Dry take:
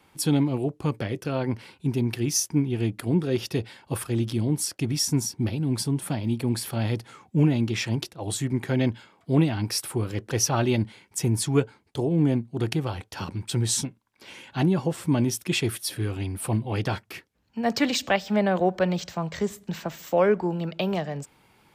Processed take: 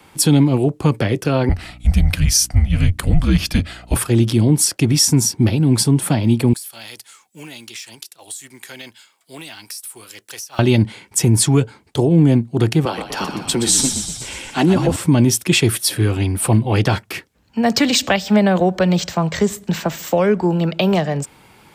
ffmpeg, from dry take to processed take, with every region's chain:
-filter_complex "[0:a]asettb=1/sr,asplit=3[s0][s1][s2];[s0]atrim=end=1.494[s3];[s1]atrim=start=1.49:end=3.96,asetpts=PTS-STARTPTS,afade=t=in:d=0.004:c=qsin,afade=t=out:st=2.466:d=0.004:c=qsin,afreqshift=-200,aeval=exprs='val(0)+0.00251*(sin(2*PI*60*n/s)+sin(2*PI*2*60*n/s)/2+sin(2*PI*3*60*n/s)/3+sin(2*PI*4*60*n/s)/4+sin(2*PI*5*60*n/s)/5)':c=same[s4];[s2]atrim=start=3.956[s5];[s3][s4]acrossfade=d=0.004:c1=hsin:c2=qsin[s6];[s6][s5]acrossfade=d=0.004:c1=qsin:c2=hsin,asettb=1/sr,asplit=3[s7][s8][s9];[s7]atrim=end=6.534[s10];[s8]atrim=start=6.53:end=10.59,asetpts=PTS-STARTPTS,afade=t=in:d=0.004:c=qsin,afade=t=out:st=4.056:d=0.004:c=qsin,aderivative,acompressor=threshold=0.01:ratio=16:attack=3.2:release=140:knee=1:detection=peak,acrusher=bits=6:mode=log:mix=0:aa=0.000001[s11];[s9]atrim=start=10.586[s12];[s10][s11]acrossfade=d=0.004:c1=hsin:c2=qsin[s13];[s13][s12]acrossfade=d=0.004:c1=qsin:c2=hsin,asettb=1/sr,asplit=3[s14][s15][s16];[s14]atrim=end=12.854[s17];[s15]atrim=start=12.85:end=14.96,asetpts=PTS-STARTPTS,afade=t=in:d=0.004:c=qsin,afade=t=out:st=2.106:d=0.004:c=qsin,highpass=f=190:w=0.5412,highpass=f=190:w=1.3066,asplit=9[s18][s19][s20][s21][s22][s23][s24][s25][s26];[s19]adelay=122,afreqshift=-48,volume=0.398[s27];[s20]adelay=244,afreqshift=-96,volume=0.245[s28];[s21]adelay=366,afreqshift=-144,volume=0.153[s29];[s22]adelay=488,afreqshift=-192,volume=0.0944[s30];[s23]adelay=610,afreqshift=-240,volume=0.0589[s31];[s24]adelay=732,afreqshift=-288,volume=0.0363[s32];[s25]adelay=854,afreqshift=-336,volume=0.0226[s33];[s26]adelay=976,afreqshift=-384,volume=0.014[s34];[s18][s27][s28][s29][s30][s31][s32][s33][s34]amix=inputs=9:normalize=0,atrim=end_sample=93051[s35];[s16]atrim=start=14.956[s36];[s17][s35]acrossfade=d=0.004:c1=hsin:c2=qsin[s37];[s37][s36]acrossfade=d=0.004:c1=qsin:c2=hsin,equalizer=f=8000:w=3:g=3,acrossover=split=230|3000[s38][s39][s40];[s39]acompressor=threshold=0.0501:ratio=6[s41];[s38][s41][s40]amix=inputs=3:normalize=0,alimiter=level_in=5.31:limit=0.891:release=50:level=0:latency=1,volume=0.708"

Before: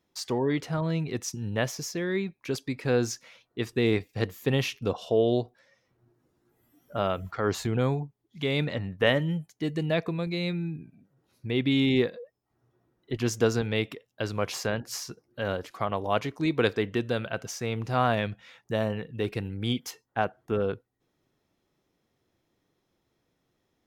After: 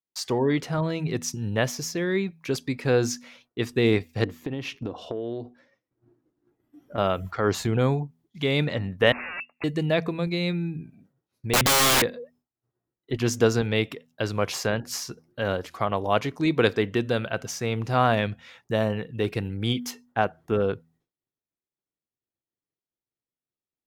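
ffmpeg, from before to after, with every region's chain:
-filter_complex "[0:a]asettb=1/sr,asplit=3[s0][s1][s2];[s0]atrim=end=4.244[s3];[s1]atrim=start=4.24:end=6.98,asetpts=PTS-STARTPTS,afade=t=in:d=0.004:c=qsin,afade=t=out:st=2.736:d=0.004:c=qsin,lowpass=f=2500:p=1,equalizer=f=300:w=2.8:g=10,acompressor=threshold=0.0316:ratio=12:attack=3.2:release=140:knee=1:detection=peak[s4];[s2]atrim=start=6.976[s5];[s3][s4]acrossfade=d=0.004:c1=hsin:c2=qsin[s6];[s6][s5]acrossfade=d=0.004:c1=qsin:c2=hsin,asettb=1/sr,asplit=3[s7][s8][s9];[s7]atrim=end=9.124[s10];[s8]atrim=start=9.12:end=9.64,asetpts=PTS-STARTPTS,afade=t=in:d=0.004:c=qsin,afade=t=out:st=0.516:d=0.004:c=qsin,equalizer=f=310:w=2:g=-5.5,aeval=exprs='(mod(39.8*val(0)+1,2)-1)/39.8':c=same,lowpass=f=2400:t=q:w=0.5098,lowpass=f=2400:t=q:w=0.6013,lowpass=f=2400:t=q:w=0.9,lowpass=f=2400:t=q:w=2.563,afreqshift=-2800[s11];[s9]atrim=start=9.636[s12];[s10][s11]acrossfade=d=0.004:c1=hsin:c2=qsin[s13];[s13][s12]acrossfade=d=0.004:c1=qsin:c2=hsin,asettb=1/sr,asplit=3[s14][s15][s16];[s14]atrim=end=11.534[s17];[s15]atrim=start=11.53:end=12.02,asetpts=PTS-STARTPTS,afade=t=in:d=0.004:c=qsin,afade=t=out:st=0.486:d=0.004:c=qsin,highpass=f=45:w=0.5412,highpass=f=45:w=1.3066,aeval=exprs='(mod(17.8*val(0)+1,2)-1)/17.8':c=same,acontrast=76[s18];[s16]atrim=start=12.016[s19];[s17][s18]acrossfade=d=0.004:c1=hsin:c2=qsin[s20];[s20][s19]acrossfade=d=0.004:c1=qsin:c2=hsin,bandreject=f=81.34:t=h:w=4,bandreject=f=162.68:t=h:w=4,bandreject=f=244.02:t=h:w=4,agate=range=0.0224:threshold=0.00126:ratio=3:detection=peak,volume=1.5"

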